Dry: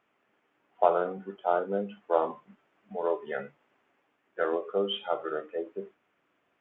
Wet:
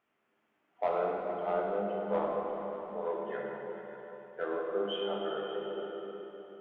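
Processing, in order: harmonic-percussive split percussive -3 dB; saturation -16 dBFS, distortion -17 dB; on a send: delay with an opening low-pass 147 ms, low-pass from 200 Hz, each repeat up 2 oct, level -6 dB; on the sum: plate-style reverb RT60 2.7 s, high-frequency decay 0.85×, DRR -1.5 dB; trim -6 dB

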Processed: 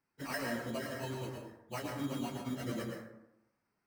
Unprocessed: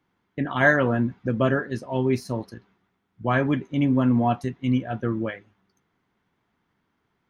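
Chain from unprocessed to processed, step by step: bass shelf 300 Hz -8 dB; compression 12:1, threshold -25 dBFS, peak gain reduction 12.5 dB; chorus voices 2, 0.49 Hz, delay 30 ms, depth 1.8 ms; sample-rate reducer 3.5 kHz, jitter 0%; plain phase-vocoder stretch 0.53×; plate-style reverb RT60 0.87 s, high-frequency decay 0.45×, pre-delay 95 ms, DRR 1 dB; trim -4 dB

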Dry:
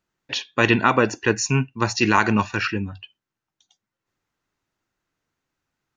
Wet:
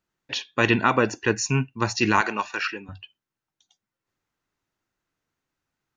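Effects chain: 2.21–2.89 s: high-pass 460 Hz 12 dB/octave; trim -2.5 dB

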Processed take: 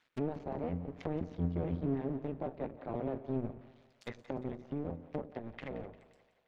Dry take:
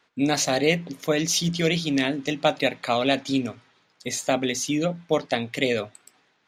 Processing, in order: cycle switcher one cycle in 2, muted; Doppler pass-by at 1.80 s, 9 m/s, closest 5.6 m; gain riding within 4 dB 0.5 s; peak limiter -18.5 dBFS, peak gain reduction 7 dB; hard clipper -25.5 dBFS, distortion -13 dB; peaking EQ 2.4 kHz +5 dB 1.7 oct; low-pass that closes with the level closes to 630 Hz, closed at -34 dBFS; bass shelf 270 Hz +6.5 dB; on a send: two-band feedback delay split 570 Hz, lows 103 ms, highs 175 ms, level -15 dB; on the sum: trim -3.5 dB

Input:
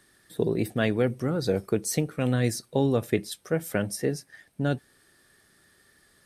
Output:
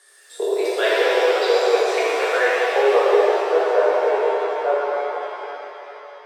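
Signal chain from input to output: steep high-pass 380 Hz 72 dB/octave; low-pass sweep 9 kHz -> 1 kHz, 0.01–3.22 s; pitch-shifted reverb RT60 3.5 s, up +7 st, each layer -8 dB, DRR -8.5 dB; trim +2 dB

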